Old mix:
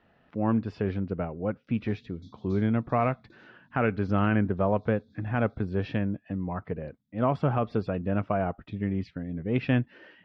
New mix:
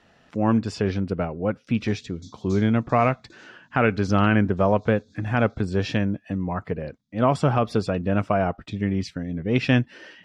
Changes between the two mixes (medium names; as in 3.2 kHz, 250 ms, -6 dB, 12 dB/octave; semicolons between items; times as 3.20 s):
speech +4.5 dB; master: remove distance through air 330 m